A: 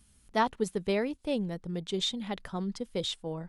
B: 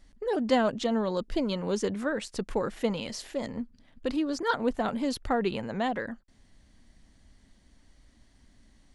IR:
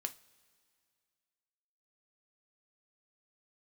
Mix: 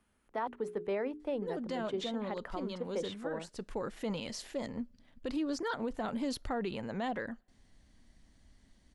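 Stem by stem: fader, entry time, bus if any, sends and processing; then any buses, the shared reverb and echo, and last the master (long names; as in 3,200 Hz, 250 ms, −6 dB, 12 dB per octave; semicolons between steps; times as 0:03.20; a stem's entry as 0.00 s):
+1.0 dB, 0.00 s, no send, three-way crossover with the lows and the highs turned down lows −15 dB, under 280 Hz, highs −19 dB, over 2,200 Hz; mains-hum notches 60/120/180/240/300/360/420 Hz
−5.0 dB, 1.20 s, send −17 dB, automatic ducking −8 dB, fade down 1.70 s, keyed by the first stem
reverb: on, pre-delay 3 ms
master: brickwall limiter −26.5 dBFS, peak gain reduction 12 dB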